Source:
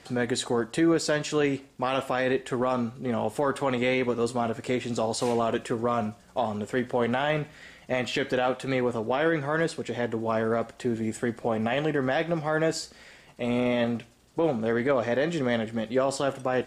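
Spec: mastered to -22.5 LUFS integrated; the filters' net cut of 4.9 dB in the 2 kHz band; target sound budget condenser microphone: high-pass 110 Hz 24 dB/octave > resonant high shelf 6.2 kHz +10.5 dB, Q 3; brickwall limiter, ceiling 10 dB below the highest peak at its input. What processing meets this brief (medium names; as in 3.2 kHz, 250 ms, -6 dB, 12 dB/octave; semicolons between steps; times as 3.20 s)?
peaking EQ 2 kHz -5 dB; peak limiter -23.5 dBFS; high-pass 110 Hz 24 dB/octave; resonant high shelf 6.2 kHz +10.5 dB, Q 3; trim +8.5 dB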